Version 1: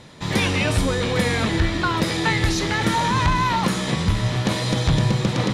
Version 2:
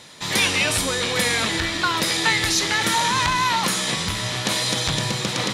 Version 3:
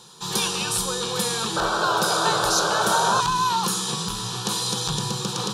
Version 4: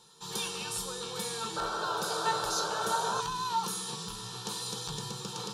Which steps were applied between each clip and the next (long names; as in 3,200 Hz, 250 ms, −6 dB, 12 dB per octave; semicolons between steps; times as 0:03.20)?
spectral tilt +3 dB per octave
phaser with its sweep stopped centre 410 Hz, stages 8; sound drawn into the spectrogram noise, 0:01.56–0:03.21, 380–1,600 Hz −24 dBFS
tuned comb filter 450 Hz, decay 0.22 s, harmonics all, mix 80%